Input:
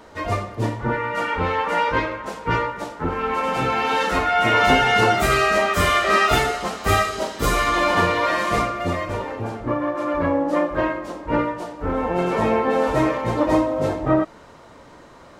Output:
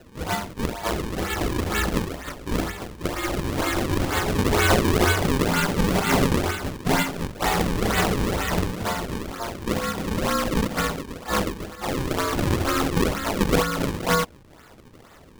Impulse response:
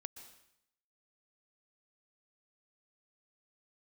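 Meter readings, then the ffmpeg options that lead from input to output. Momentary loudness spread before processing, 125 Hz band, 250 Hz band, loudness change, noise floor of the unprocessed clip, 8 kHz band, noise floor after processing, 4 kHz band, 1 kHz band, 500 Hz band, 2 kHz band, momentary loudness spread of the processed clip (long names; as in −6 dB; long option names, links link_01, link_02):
10 LU, +1.5 dB, −0.5 dB, −3.5 dB, −46 dBFS, +3.5 dB, −49 dBFS, −1.5 dB, −7.0 dB, −4.5 dB, −5.0 dB, 9 LU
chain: -af "aeval=exprs='val(0)*sin(2*PI*900*n/s)':channel_layout=same,afreqshift=-100,acrusher=samples=37:mix=1:aa=0.000001:lfo=1:lforange=59.2:lforate=2.1"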